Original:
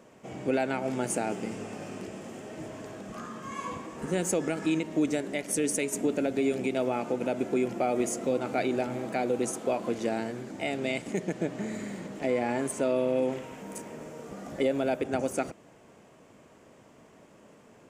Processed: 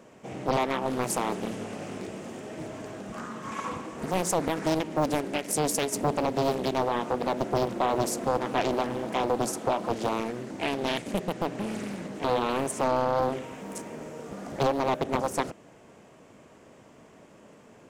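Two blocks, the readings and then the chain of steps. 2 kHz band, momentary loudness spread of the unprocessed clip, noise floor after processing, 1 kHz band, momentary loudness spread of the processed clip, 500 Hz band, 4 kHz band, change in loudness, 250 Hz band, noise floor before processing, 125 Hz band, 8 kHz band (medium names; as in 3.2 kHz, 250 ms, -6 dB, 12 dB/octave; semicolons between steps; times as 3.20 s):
+1.0 dB, 13 LU, -54 dBFS, +7.0 dB, 12 LU, +1.0 dB, +6.5 dB, +1.5 dB, -1.0 dB, -56 dBFS, +4.0 dB, +1.0 dB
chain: loudspeaker Doppler distortion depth 0.99 ms; trim +2.5 dB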